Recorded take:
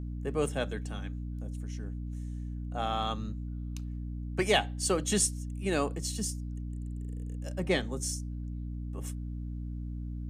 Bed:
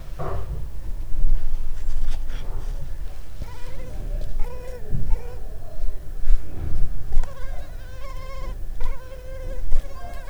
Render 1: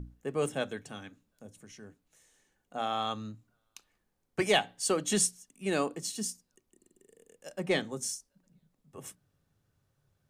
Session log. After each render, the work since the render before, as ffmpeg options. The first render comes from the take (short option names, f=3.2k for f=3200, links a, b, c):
-af "bandreject=f=60:t=h:w=6,bandreject=f=120:t=h:w=6,bandreject=f=180:t=h:w=6,bandreject=f=240:t=h:w=6,bandreject=f=300:t=h:w=6"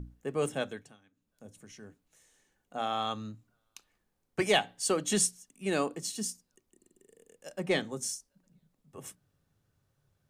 -filter_complex "[0:a]asplit=3[a][b][c];[a]atrim=end=0.97,asetpts=PTS-STARTPTS,afade=t=out:st=0.52:d=0.45:c=qsin:silence=0.105925[d];[b]atrim=start=0.97:end=1.14,asetpts=PTS-STARTPTS,volume=-19.5dB[e];[c]atrim=start=1.14,asetpts=PTS-STARTPTS,afade=t=in:d=0.45:c=qsin:silence=0.105925[f];[d][e][f]concat=n=3:v=0:a=1"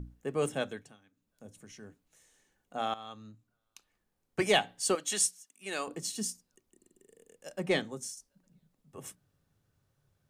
-filter_complex "[0:a]asettb=1/sr,asplit=3[a][b][c];[a]atrim=end=4.954[d];[b]atrim=start=4.95:end=5.88,asetpts=PTS-STARTPTS,afade=t=in:d=0.004:c=qsin,afade=t=out:st=0.926:d=0.004:c=qsin,highpass=f=1.2k:p=1[e];[c]atrim=start=5.876[f];[d][e]acrossfade=d=0.004:c1=hsin:c2=qsin[g];[g][f]acrossfade=d=0.004:c1=qsin:c2=hsin,asplit=3[h][i][j];[h]atrim=end=2.94,asetpts=PTS-STARTPTS,afade=t=out:st=2.936:d=0.004:c=hsin:silence=0.177828[k];[i]atrim=start=2.94:end=8.17,asetpts=PTS-STARTPTS,afade=t=in:d=1.51:silence=0.177828,afade=t=out:st=4.8:d=0.43:silence=0.375837[l];[j]atrim=start=8.17,asetpts=PTS-STARTPTS,afade=t=in:d=0.004:c=hsin:silence=0.375837[m];[k][l][m]concat=n=3:v=0:a=1"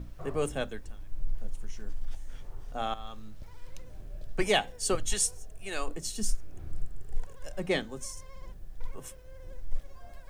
-filter_complex "[1:a]volume=-14dB[a];[0:a][a]amix=inputs=2:normalize=0"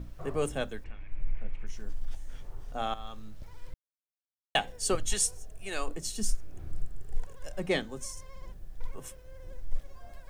-filter_complex "[0:a]asettb=1/sr,asplit=3[a][b][c];[a]atrim=end=0.844[d];[b]atrim=start=0.84:end=1.67,asetpts=PTS-STARTPTS,afade=t=in:d=0.004:c=qsin,afade=t=out:st=0.826:d=0.004:c=qsin,lowpass=f=2.3k:t=q:w=5.9[e];[c]atrim=start=1.666[f];[d][e]acrossfade=d=0.004:c1=hsin:c2=qsin[g];[g][f]acrossfade=d=0.004:c1=qsin:c2=hsin,asplit=3[h][i][j];[h]atrim=end=3.74,asetpts=PTS-STARTPTS,afade=t=out:st=3.736:d=0.004:c=hsin[k];[i]atrim=start=3.74:end=4.55,asetpts=PTS-STARTPTS,volume=0[l];[j]atrim=start=4.55,asetpts=PTS-STARTPTS,afade=t=in:d=0.004:c=hsin[m];[k][l][m]concat=n=3:v=0:a=1"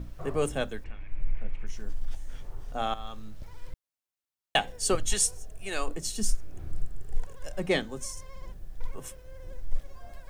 -af "volume=2.5dB"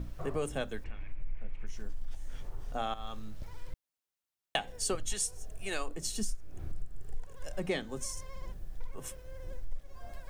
-af "acompressor=threshold=-31dB:ratio=3"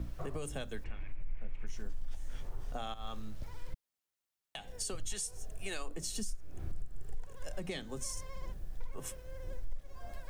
-filter_complex "[0:a]acrossover=split=150|3000[a][b][c];[b]acompressor=threshold=-38dB:ratio=6[d];[a][d][c]amix=inputs=3:normalize=0,alimiter=level_in=3dB:limit=-24dB:level=0:latency=1:release=119,volume=-3dB"